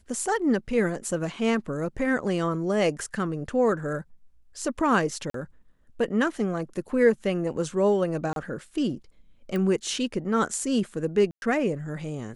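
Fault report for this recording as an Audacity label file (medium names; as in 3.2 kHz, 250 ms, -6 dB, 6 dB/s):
5.300000	5.340000	dropout 43 ms
8.330000	8.360000	dropout 32 ms
9.560000	9.560000	pop -19 dBFS
11.310000	11.420000	dropout 111 ms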